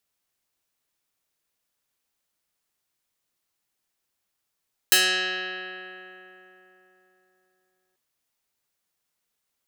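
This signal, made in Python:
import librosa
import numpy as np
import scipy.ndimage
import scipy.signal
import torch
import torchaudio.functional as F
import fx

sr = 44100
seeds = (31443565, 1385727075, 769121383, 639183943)

y = fx.pluck(sr, length_s=3.04, note=54, decay_s=3.83, pick=0.16, brightness='medium')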